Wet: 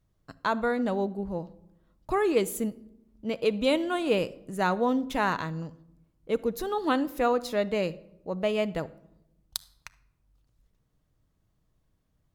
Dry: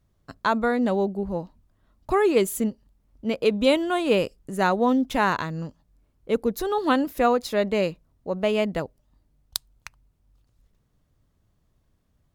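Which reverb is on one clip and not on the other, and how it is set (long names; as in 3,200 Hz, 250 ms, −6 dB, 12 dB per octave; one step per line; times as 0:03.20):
rectangular room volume 2,600 cubic metres, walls furnished, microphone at 0.57 metres
level −4.5 dB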